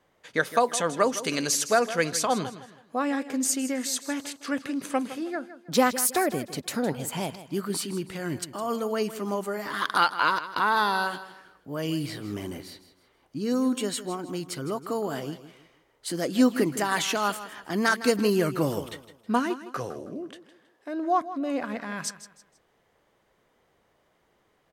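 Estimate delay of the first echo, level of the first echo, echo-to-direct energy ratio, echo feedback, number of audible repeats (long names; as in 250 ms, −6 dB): 160 ms, −14.0 dB, −13.5 dB, 33%, 3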